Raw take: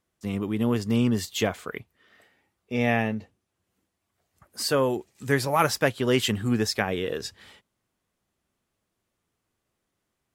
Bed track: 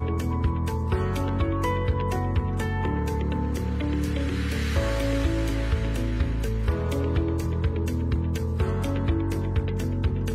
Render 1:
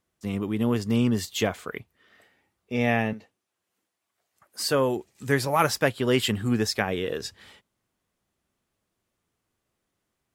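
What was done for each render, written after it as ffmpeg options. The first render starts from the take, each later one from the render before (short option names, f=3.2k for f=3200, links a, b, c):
-filter_complex "[0:a]asettb=1/sr,asplit=3[a][b][c];[a]atrim=end=3.134[d];[b]atrim=start=3.13:end=4.63,asetpts=PTS-STARTPTS,afade=t=in:d=0.004:c=qsin,afade=t=out:st=1.496:d=0.004:c=qsin,highpass=f=580:p=1[e];[c]atrim=start=4.626[f];[d][e]acrossfade=d=0.004:c1=hsin:c2=qsin[g];[g][f]acrossfade=d=0.004:c1=qsin:c2=hsin,asettb=1/sr,asplit=3[h][i][j];[h]atrim=end=5.864[k];[i]atrim=start=5.86:end=6.39,asetpts=PTS-STARTPTS,afade=t=in:d=0.004:c=qsin,afade=t=out:st=0.526:d=0.004:c=qsin,bandreject=f=6.1k:w=7.2[l];[j]atrim=start=6.386[m];[k][l]acrossfade=d=0.004:c1=hsin:c2=qsin[n];[n][m]acrossfade=d=0.004:c1=qsin:c2=hsin"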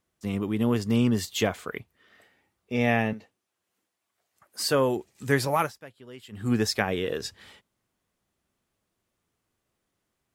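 -filter_complex "[0:a]asplit=3[a][b][c];[a]atrim=end=5.73,asetpts=PTS-STARTPTS,afade=t=out:st=5.53:d=0.2:silence=0.0749894[d];[b]atrim=start=5.73:end=6.31,asetpts=PTS-STARTPTS,volume=-22.5dB[e];[c]atrim=start=6.31,asetpts=PTS-STARTPTS,afade=t=in:d=0.2:silence=0.0749894[f];[d][e][f]concat=n=3:v=0:a=1"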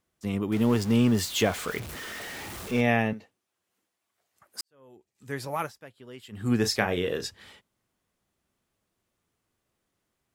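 -filter_complex "[0:a]asettb=1/sr,asplit=3[a][b][c];[a]atrim=end=0.524[d];[b]atrim=start=0.52:end=2.81,asetpts=PTS-STARTPTS,afade=t=in:d=0.004:c=qsin,afade=t=out:st=2.286:d=0.004:c=qsin,aeval=exprs='val(0)+0.5*0.0224*sgn(val(0))':c=same[e];[c]atrim=start=2.806[f];[d][e]acrossfade=d=0.004:c1=hsin:c2=qsin[g];[g][f]acrossfade=d=0.004:c1=qsin:c2=hsin,asettb=1/sr,asplit=3[h][i][j];[h]atrim=end=6.604[k];[i]atrim=start=6.6:end=7.25,asetpts=PTS-STARTPTS,afade=t=in:d=0.004:c=qsin,afade=t=out:st=0.646:d=0.004:c=qsin,asplit=2[l][m];[m]adelay=34,volume=-9dB[n];[l][n]amix=inputs=2:normalize=0,atrim=end_sample=28665[o];[j]atrim=start=7.246[p];[k][o]acrossfade=d=0.004:c1=hsin:c2=qsin[q];[q][p]acrossfade=d=0.004:c1=qsin:c2=hsin,asplit=2[r][s];[r]atrim=end=4.61,asetpts=PTS-STARTPTS,afade=t=out:st=4.606:d=0.004:c=hsin[t];[s]atrim=start=4.61,asetpts=PTS-STARTPTS,afade=t=in:d=1.38:c=qua[u];[t][u]concat=n=2:v=0:a=1"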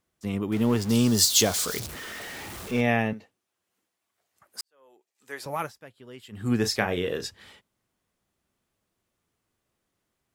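-filter_complex "[0:a]asettb=1/sr,asplit=3[a][b][c];[a]atrim=end=0.894[d];[b]atrim=start=0.89:end=1.87,asetpts=PTS-STARTPTS,afade=t=in:d=0.004:c=qsin,afade=t=out:st=0.976:d=0.004:c=qsin,highshelf=f=3.4k:t=q:w=1.5:g=11[e];[c]atrim=start=1.866[f];[d][e]acrossfade=d=0.004:c1=hsin:c2=qsin[g];[g][f]acrossfade=d=0.004:c1=qsin:c2=hsin,asettb=1/sr,asplit=3[h][i][j];[h]atrim=end=4.604[k];[i]atrim=start=4.6:end=5.46,asetpts=PTS-STARTPTS,afade=t=in:d=0.004:c=qsin,afade=t=out:st=0.856:d=0.004:c=qsin,highpass=510[l];[j]atrim=start=5.456[m];[k][l]acrossfade=d=0.004:c1=hsin:c2=qsin[n];[n][m]acrossfade=d=0.004:c1=qsin:c2=hsin"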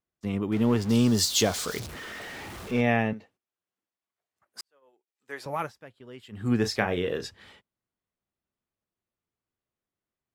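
-af "agate=range=-12dB:threshold=-56dB:ratio=16:detection=peak,highshelf=f=5.9k:g=-10"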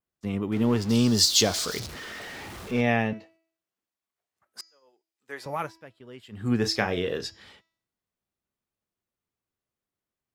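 -af "adynamicequalizer=threshold=0.00562:dfrequency=4800:dqfactor=1.5:tfrequency=4800:tqfactor=1.5:attack=5:release=100:ratio=0.375:range=3.5:mode=boostabove:tftype=bell,bandreject=f=326.8:t=h:w=4,bandreject=f=653.6:t=h:w=4,bandreject=f=980.4:t=h:w=4,bandreject=f=1.3072k:t=h:w=4,bandreject=f=1.634k:t=h:w=4,bandreject=f=1.9608k:t=h:w=4,bandreject=f=2.2876k:t=h:w=4,bandreject=f=2.6144k:t=h:w=4,bandreject=f=2.9412k:t=h:w=4,bandreject=f=3.268k:t=h:w=4,bandreject=f=3.5948k:t=h:w=4,bandreject=f=3.9216k:t=h:w=4,bandreject=f=4.2484k:t=h:w=4,bandreject=f=4.5752k:t=h:w=4,bandreject=f=4.902k:t=h:w=4,bandreject=f=5.2288k:t=h:w=4,bandreject=f=5.5556k:t=h:w=4,bandreject=f=5.8824k:t=h:w=4,bandreject=f=6.2092k:t=h:w=4,bandreject=f=6.536k:t=h:w=4,bandreject=f=6.8628k:t=h:w=4,bandreject=f=7.1896k:t=h:w=4"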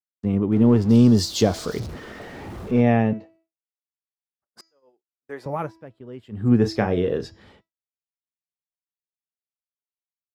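-af "tiltshelf=f=1.2k:g=8.5,agate=range=-33dB:threshold=-53dB:ratio=3:detection=peak"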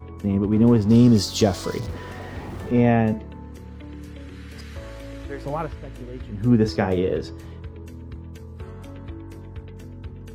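-filter_complex "[1:a]volume=-12dB[a];[0:a][a]amix=inputs=2:normalize=0"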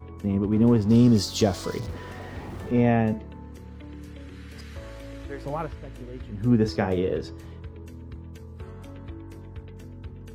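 -af "volume=-3dB"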